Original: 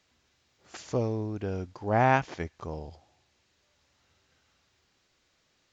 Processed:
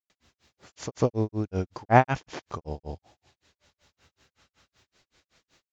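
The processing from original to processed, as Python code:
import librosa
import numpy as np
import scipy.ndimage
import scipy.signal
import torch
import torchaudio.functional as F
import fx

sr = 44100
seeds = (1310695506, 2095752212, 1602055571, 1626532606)

y = fx.granulator(x, sr, seeds[0], grain_ms=160.0, per_s=5.3, spray_ms=100.0, spread_st=0)
y = y * librosa.db_to_amplitude(8.5)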